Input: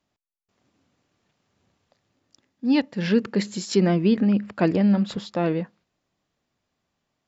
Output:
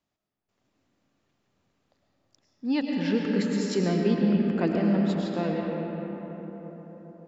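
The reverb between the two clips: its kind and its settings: algorithmic reverb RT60 4.8 s, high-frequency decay 0.4×, pre-delay 65 ms, DRR -0.5 dB; trim -6.5 dB

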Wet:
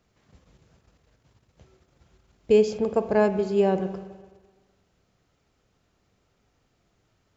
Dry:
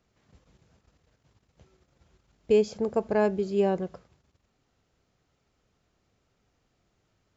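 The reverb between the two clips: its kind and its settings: spring tank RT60 1.4 s, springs 42/58 ms, chirp 60 ms, DRR 10 dB; trim +3 dB

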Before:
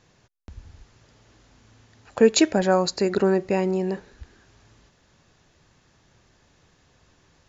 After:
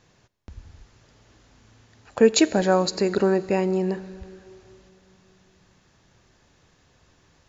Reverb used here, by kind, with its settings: Schroeder reverb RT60 3.2 s, combs from 29 ms, DRR 18 dB

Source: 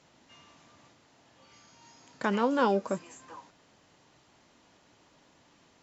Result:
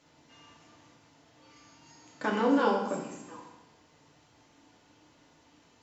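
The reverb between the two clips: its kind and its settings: FDN reverb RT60 0.96 s, low-frequency decay 1.4×, high-frequency decay 0.9×, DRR -2 dB; trim -4 dB

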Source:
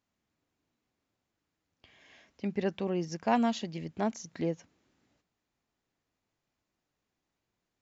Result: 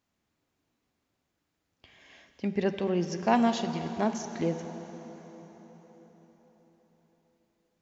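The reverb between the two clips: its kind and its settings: plate-style reverb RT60 4.9 s, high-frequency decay 0.8×, DRR 8 dB; trim +3 dB

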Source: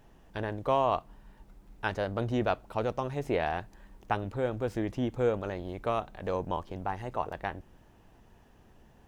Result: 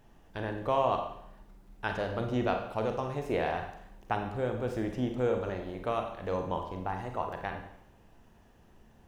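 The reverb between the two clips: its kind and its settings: Schroeder reverb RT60 0.74 s, combs from 32 ms, DRR 4 dB; trim -2 dB

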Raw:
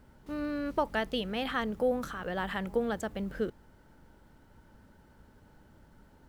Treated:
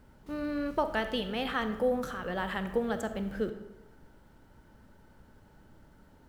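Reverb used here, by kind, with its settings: algorithmic reverb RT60 1 s, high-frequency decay 0.65×, pre-delay 5 ms, DRR 8.5 dB

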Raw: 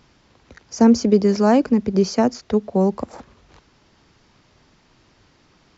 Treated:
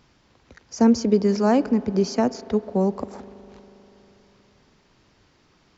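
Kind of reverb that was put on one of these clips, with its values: spring tank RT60 3.8 s, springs 40 ms, chirp 30 ms, DRR 17 dB; trim -3.5 dB

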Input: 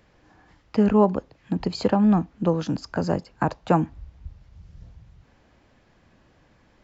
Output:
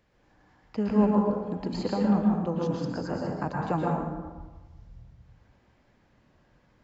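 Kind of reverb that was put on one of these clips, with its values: plate-style reverb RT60 1.3 s, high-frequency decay 0.5×, pre-delay 105 ms, DRR -2.5 dB; trim -9.5 dB

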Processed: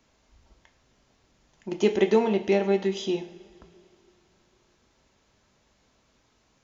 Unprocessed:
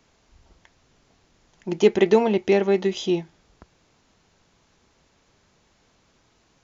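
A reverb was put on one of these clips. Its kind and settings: two-slope reverb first 0.52 s, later 3.1 s, from -20 dB, DRR 6.5 dB; trim -4.5 dB

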